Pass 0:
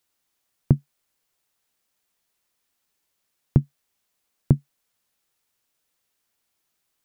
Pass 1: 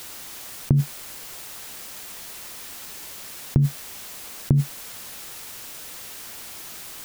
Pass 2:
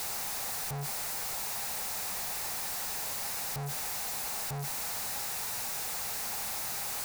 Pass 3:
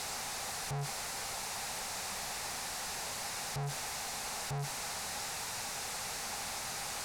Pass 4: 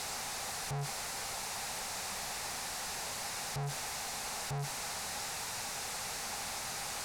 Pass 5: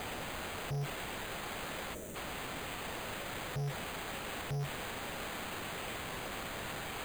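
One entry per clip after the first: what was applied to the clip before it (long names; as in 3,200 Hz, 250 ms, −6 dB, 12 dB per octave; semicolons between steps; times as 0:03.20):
envelope flattener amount 100%; level −2.5 dB
sign of each sample alone; thirty-one-band graphic EQ 315 Hz −12 dB, 800 Hz +9 dB, 3,150 Hz −7 dB; level −6.5 dB
low-pass filter 8,500 Hz 12 dB per octave
no processing that can be heard
flat-topped bell 1,800 Hz −13.5 dB 2.6 octaves; bad sample-rate conversion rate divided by 8×, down none, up hold; gain on a spectral selection 0:01.94–0:02.15, 680–5,500 Hz −13 dB; level +1.5 dB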